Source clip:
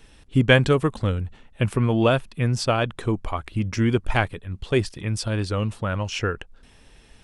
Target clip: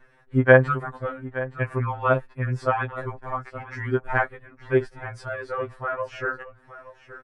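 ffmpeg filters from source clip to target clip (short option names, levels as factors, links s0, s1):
-filter_complex "[0:a]firequalizer=gain_entry='entry(230,0);entry(440,8);entry(1700,13);entry(2900,-8);entry(7100,-11)':delay=0.05:min_phase=1,asplit=2[s0][s1];[s1]aecho=0:1:871:0.168[s2];[s0][s2]amix=inputs=2:normalize=0,afftfilt=real='re*2.45*eq(mod(b,6),0)':imag='im*2.45*eq(mod(b,6),0)':win_size=2048:overlap=0.75,volume=0.447"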